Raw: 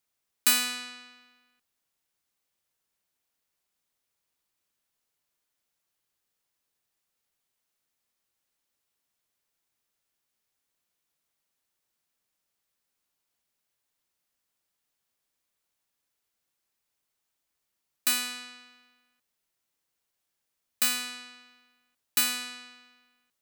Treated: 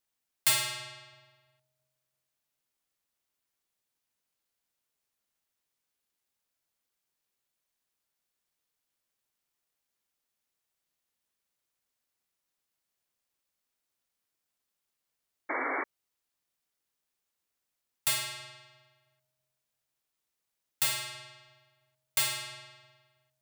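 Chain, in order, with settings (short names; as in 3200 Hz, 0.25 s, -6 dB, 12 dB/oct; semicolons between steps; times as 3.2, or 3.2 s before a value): analogue delay 0.331 s, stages 1024, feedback 33%, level -19 dB; ring modulator 380 Hz; painted sound noise, 15.49–15.84, 250–2300 Hz -32 dBFS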